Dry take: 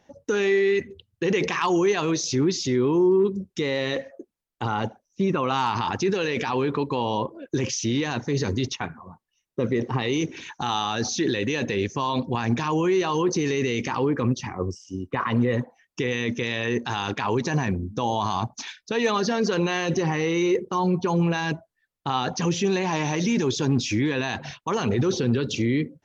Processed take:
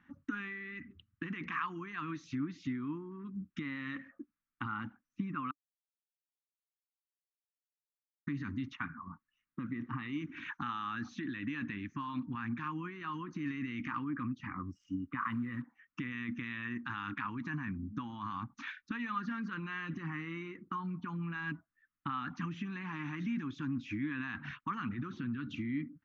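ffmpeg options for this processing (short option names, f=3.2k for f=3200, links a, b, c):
-filter_complex "[0:a]asettb=1/sr,asplit=3[a][b][c];[a]atrim=end=15.194[d];[b]atrim=start=15.19:end=15.62,asetpts=PTS-STARTPTS,afade=t=in:d=0.004:c=qsin,afade=t=out:st=0.426:d=0.004:c=qsin,acrusher=bits=6:mix=0:aa=0.5[e];[c]atrim=start=15.616[f];[d][e]acrossfade=d=0.004:c1=hsin:c2=qsin[g];[g][f]acrossfade=d=0.004:c1=qsin:c2=hsin,asplit=3[h][i][j];[h]atrim=end=5.51,asetpts=PTS-STARTPTS,afade=t=out:st=5.506:d=0.004:c=hsin[k];[i]atrim=start=5.51:end=8.27,asetpts=PTS-STARTPTS,volume=0[l];[j]atrim=start=8.27,asetpts=PTS-STARTPTS,afade=t=in:d=0.004:c=hsin[m];[k][l][m]concat=n=3:v=0:a=1,acompressor=threshold=-32dB:ratio=6,firequalizer=gain_entry='entry(110,0);entry(290,8);entry(410,-22);entry(620,-21);entry(1200,11);entry(5000,-19)':delay=0.05:min_phase=1,volume=-6dB"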